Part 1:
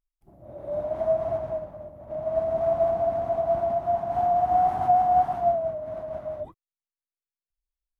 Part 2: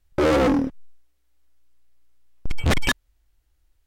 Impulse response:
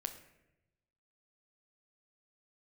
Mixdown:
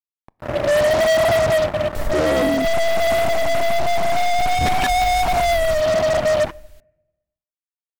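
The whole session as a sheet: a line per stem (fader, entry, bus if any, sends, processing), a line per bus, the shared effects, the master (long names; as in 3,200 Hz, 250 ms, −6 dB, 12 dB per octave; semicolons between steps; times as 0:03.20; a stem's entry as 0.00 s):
−2.5 dB, 0.00 s, send −13 dB, no echo send, fuzz pedal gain 38 dB, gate −45 dBFS
+1.0 dB, 1.95 s, no send, echo send −20.5 dB, envelope flattener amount 100%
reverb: on, RT60 0.90 s, pre-delay 8 ms
echo: single-tap delay 990 ms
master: brickwall limiter −12.5 dBFS, peak gain reduction 9.5 dB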